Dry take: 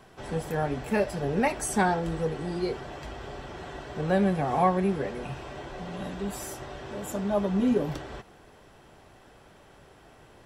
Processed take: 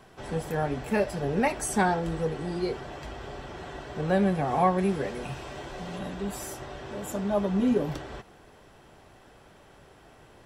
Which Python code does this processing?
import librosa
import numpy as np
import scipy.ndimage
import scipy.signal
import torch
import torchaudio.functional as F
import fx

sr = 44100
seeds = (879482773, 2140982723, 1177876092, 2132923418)

y = fx.high_shelf(x, sr, hz=3800.0, db=6.5, at=(4.78, 5.99))